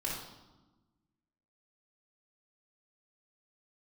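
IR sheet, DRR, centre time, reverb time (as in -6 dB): -6.0 dB, 58 ms, 1.1 s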